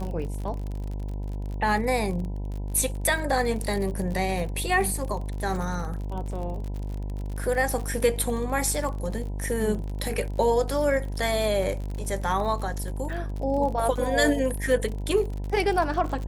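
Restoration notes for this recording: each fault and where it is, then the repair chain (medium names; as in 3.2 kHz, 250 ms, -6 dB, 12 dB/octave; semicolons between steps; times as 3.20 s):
buzz 50 Hz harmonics 20 -31 dBFS
crackle 46 per s -32 dBFS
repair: de-click; de-hum 50 Hz, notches 20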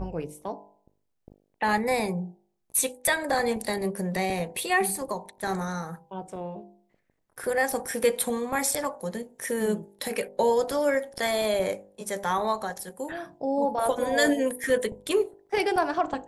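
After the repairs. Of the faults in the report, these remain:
nothing left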